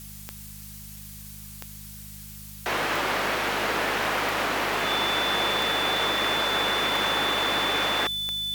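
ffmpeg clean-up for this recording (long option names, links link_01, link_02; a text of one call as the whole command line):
ffmpeg -i in.wav -af "adeclick=threshold=4,bandreject=frequency=51.3:width_type=h:width=4,bandreject=frequency=102.6:width_type=h:width=4,bandreject=frequency=153.9:width_type=h:width=4,bandreject=frequency=205.2:width_type=h:width=4,bandreject=frequency=3500:width=30,afftdn=noise_reduction=30:noise_floor=-42" out.wav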